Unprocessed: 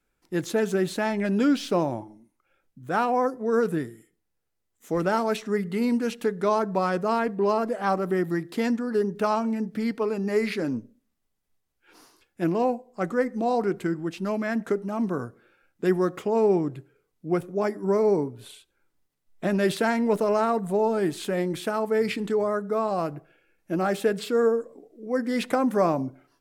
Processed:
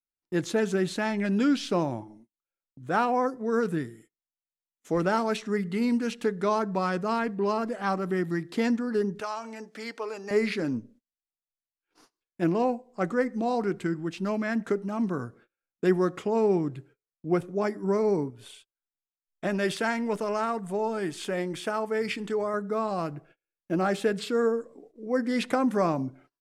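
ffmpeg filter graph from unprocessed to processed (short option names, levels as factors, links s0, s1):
-filter_complex "[0:a]asettb=1/sr,asplit=3[s0][s1][s2];[s0]atrim=end=9.204[s3];[s1]atrim=start=9.2:end=10.31,asetpts=PTS-STARTPTS,afade=t=in:d=0.004:c=qsin,afade=t=out:st=1.106:d=0.004:c=qsin,highpass=560,equalizer=f=6500:w=1.5:g=5.5,acompressor=threshold=0.0316:ratio=2:attack=3.2:release=140:knee=1:detection=peak[s4];[s2]atrim=start=10.306[s5];[s3][s4]acrossfade=d=0.004:c1=hsin:c2=qsin[s6];[s6][s5]acrossfade=d=0.004:c1=qsin:c2=hsin,asettb=1/sr,asplit=3[s7][s8][s9];[s7]atrim=end=18.304[s10];[s8]atrim=start=18.3:end=22.54,asetpts=PTS-STARTPTS,afade=t=in:d=0.004:c=qsin,afade=t=out:st=4.236:d=0.004:c=qsin,equalizer=f=150:w=0.34:g=-5,bandreject=f=4000:w=10[s11];[s9]atrim=start=22.536[s12];[s10][s11]acrossfade=d=0.004:c1=hsin:c2=qsin[s13];[s13][s12]acrossfade=d=0.004:c1=qsin:c2=hsin,agate=range=0.0355:threshold=0.00251:ratio=16:detection=peak,lowpass=9100,adynamicequalizer=threshold=0.0141:dfrequency=580:dqfactor=0.84:tfrequency=580:tqfactor=0.84:attack=5:release=100:ratio=0.375:range=3:mode=cutabove:tftype=bell"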